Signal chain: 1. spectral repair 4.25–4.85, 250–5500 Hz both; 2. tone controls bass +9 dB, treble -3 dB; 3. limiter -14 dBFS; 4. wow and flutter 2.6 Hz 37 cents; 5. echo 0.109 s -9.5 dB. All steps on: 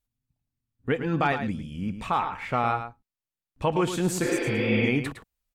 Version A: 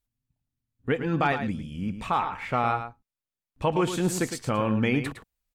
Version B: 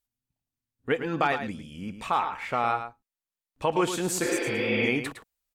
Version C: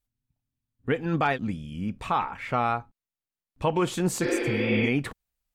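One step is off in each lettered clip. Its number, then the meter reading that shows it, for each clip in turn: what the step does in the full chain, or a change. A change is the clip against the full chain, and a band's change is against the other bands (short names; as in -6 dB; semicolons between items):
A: 1, 2 kHz band -2.0 dB; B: 2, 125 Hz band -8.0 dB; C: 5, crest factor change -1.5 dB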